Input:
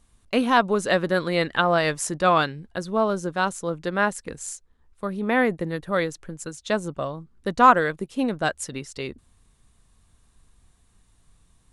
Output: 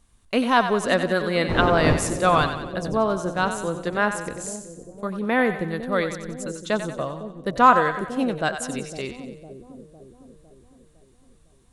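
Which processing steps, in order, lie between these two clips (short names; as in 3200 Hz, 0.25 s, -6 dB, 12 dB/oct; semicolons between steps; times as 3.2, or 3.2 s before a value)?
1.48–2.09 wind noise 430 Hz -17 dBFS; split-band echo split 560 Hz, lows 0.506 s, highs 92 ms, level -9 dB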